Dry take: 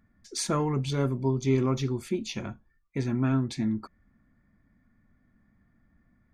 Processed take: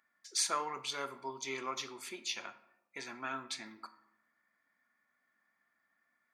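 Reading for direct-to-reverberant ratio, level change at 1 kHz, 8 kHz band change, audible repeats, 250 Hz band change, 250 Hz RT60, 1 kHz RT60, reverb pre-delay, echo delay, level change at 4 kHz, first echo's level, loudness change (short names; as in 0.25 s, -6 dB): 11.5 dB, -2.5 dB, 0.0 dB, none, -23.0 dB, 0.95 s, 0.80 s, 16 ms, none, 0.0 dB, none, -9.5 dB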